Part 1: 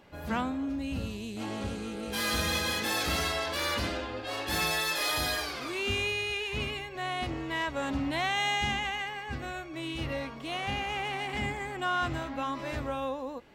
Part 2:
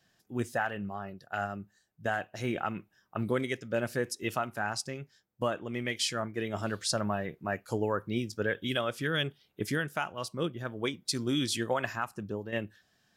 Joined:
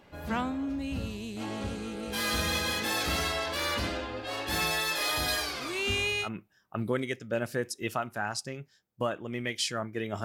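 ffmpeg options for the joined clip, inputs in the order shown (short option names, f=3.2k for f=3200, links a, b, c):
-filter_complex "[0:a]asettb=1/sr,asplit=3[a][b][c];[a]atrim=end=5.284[d];[b]atrim=start=5.28:end=6.29,asetpts=PTS-STARTPTS,afade=t=in:d=0.004:c=qsin,afade=t=out:st=1.006:d=0.004:c=qsin,equalizer=f=9.3k:w=0.37:g=4.5[e];[c]atrim=start=6.286[f];[d][e]acrossfade=d=0.004:c1=hsin:c2=qsin[g];[g][f]acrossfade=d=0.004:c1=qsin:c2=hsin,apad=whole_dur=10.24,atrim=end=10.24,atrim=end=6.29,asetpts=PTS-STARTPTS[h];[1:a]atrim=start=2.62:end=6.65,asetpts=PTS-STARTPTS[i];[h][i]acrossfade=d=0.08:c1=tri:c2=tri"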